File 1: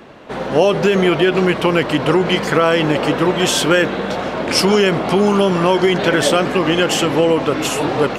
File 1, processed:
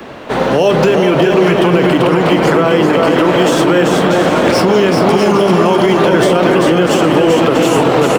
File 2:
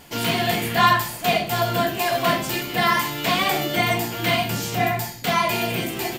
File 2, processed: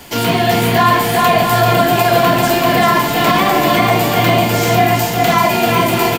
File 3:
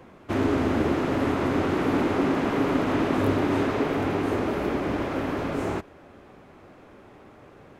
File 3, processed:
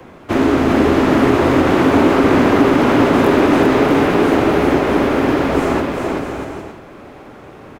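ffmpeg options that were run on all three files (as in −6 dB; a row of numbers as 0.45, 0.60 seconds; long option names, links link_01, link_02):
-filter_complex "[0:a]acrossover=split=270|3200[link_01][link_02][link_03];[link_03]acrusher=bits=3:mode=log:mix=0:aa=0.000001[link_04];[link_01][link_02][link_04]amix=inputs=3:normalize=0,acrossover=split=210|1300[link_05][link_06][link_07];[link_05]acompressor=threshold=-27dB:ratio=4[link_08];[link_06]acompressor=threshold=-17dB:ratio=4[link_09];[link_07]acompressor=threshold=-31dB:ratio=4[link_10];[link_08][link_09][link_10]amix=inputs=3:normalize=0,bandreject=frequency=50:width_type=h:width=6,bandreject=frequency=100:width_type=h:width=6,bandreject=frequency=150:width_type=h:width=6,bandreject=frequency=200:width_type=h:width=6,asplit=2[link_11][link_12];[link_12]adelay=45,volume=-13.5dB[link_13];[link_11][link_13]amix=inputs=2:normalize=0,aecho=1:1:390|643.5|808.3|915.4|985:0.631|0.398|0.251|0.158|0.1,alimiter=level_in=11dB:limit=-1dB:release=50:level=0:latency=1,volume=-1dB"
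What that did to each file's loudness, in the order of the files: +4.5, +9.0, +11.5 LU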